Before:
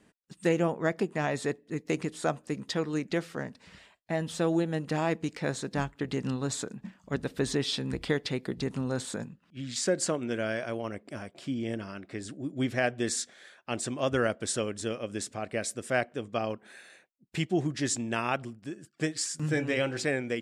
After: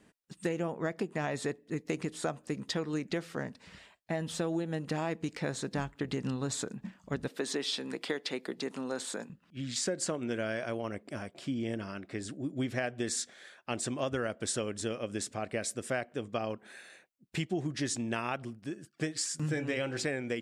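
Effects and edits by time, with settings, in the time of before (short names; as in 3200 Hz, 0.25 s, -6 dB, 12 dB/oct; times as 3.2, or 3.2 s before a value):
7.28–9.3 Bessel high-pass 320 Hz, order 4
17.75–19.15 notch 7400 Hz
whole clip: compressor, threshold -29 dBFS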